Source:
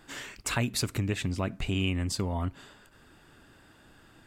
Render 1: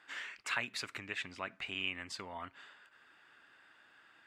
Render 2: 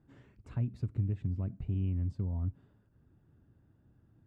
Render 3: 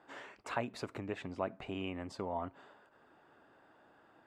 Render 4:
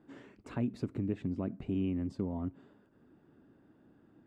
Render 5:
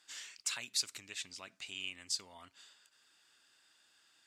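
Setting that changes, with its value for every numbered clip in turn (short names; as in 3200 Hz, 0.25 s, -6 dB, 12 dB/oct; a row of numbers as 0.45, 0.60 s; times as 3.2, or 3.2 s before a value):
band-pass, frequency: 1900, 100, 720, 260, 5600 Hz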